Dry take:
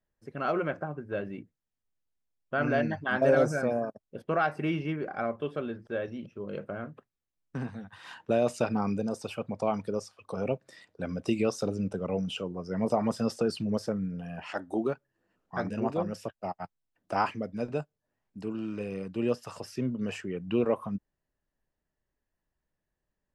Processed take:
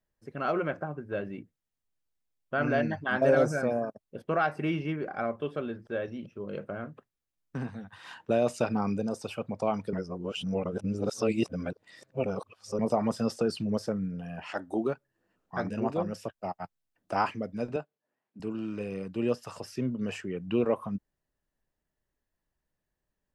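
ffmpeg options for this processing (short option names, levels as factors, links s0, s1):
-filter_complex "[0:a]asettb=1/sr,asplit=3[s0][s1][s2];[s0]atrim=end=17.764[s3];[s1]atrim=start=17.76:end=18.4,asetpts=PTS-STARTPTS,afade=t=in:d=0.004:c=qsin,afade=t=out:st=0.636:d=0.004:c=qsin,highpass=240,lowpass=3700[s4];[s2]atrim=start=18.396[s5];[s3][s4]acrossfade=d=0.004:c1=hsin:c2=qsin[s6];[s6][s5]acrossfade=d=0.004:c1=qsin:c2=hsin,asplit=3[s7][s8][s9];[s7]atrim=end=9.932[s10];[s8]atrim=start=9.928:end=12.792,asetpts=PTS-STARTPTS,areverse[s11];[s9]atrim=start=12.788[s12];[s10][s11]acrossfade=d=0.004:c1=hsin:c2=hsin[s13];[s13][s12]acrossfade=d=0.004:c1=hsin:c2=hsin"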